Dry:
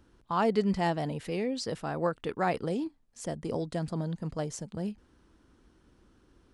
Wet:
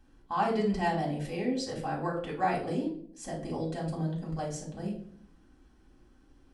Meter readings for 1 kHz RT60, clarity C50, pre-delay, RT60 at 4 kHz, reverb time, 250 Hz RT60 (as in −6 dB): 0.50 s, 7.5 dB, 3 ms, 0.40 s, 0.60 s, 0.90 s